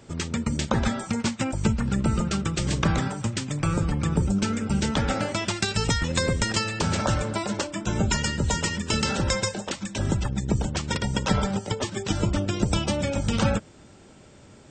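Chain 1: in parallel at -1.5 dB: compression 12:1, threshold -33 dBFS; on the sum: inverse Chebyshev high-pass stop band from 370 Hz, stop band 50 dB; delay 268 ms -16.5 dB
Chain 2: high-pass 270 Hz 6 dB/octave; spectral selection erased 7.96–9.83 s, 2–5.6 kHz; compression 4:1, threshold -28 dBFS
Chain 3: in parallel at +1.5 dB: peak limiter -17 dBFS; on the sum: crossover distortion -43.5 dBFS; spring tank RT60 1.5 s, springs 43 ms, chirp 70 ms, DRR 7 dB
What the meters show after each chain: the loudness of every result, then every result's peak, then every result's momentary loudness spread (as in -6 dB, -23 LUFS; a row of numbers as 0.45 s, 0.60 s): -29.5 LUFS, -32.5 LUFS, -20.0 LUFS; -9.0 dBFS, -13.0 dBFS, -5.0 dBFS; 9 LU, 3 LU, 4 LU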